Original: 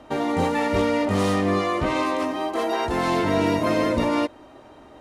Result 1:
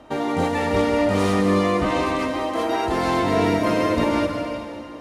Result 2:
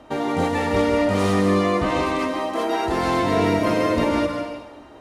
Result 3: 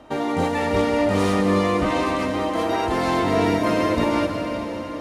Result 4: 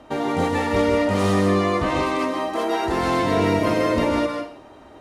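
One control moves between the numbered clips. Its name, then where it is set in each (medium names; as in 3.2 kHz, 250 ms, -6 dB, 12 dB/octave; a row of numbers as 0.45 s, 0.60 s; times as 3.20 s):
plate-style reverb, RT60: 2.6 s, 1.2 s, 5.3 s, 0.51 s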